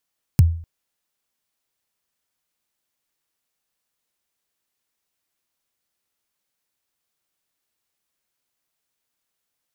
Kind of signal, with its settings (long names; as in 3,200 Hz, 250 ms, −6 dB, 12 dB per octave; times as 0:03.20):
synth kick length 0.25 s, from 160 Hz, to 83 Hz, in 23 ms, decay 0.48 s, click on, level −5.5 dB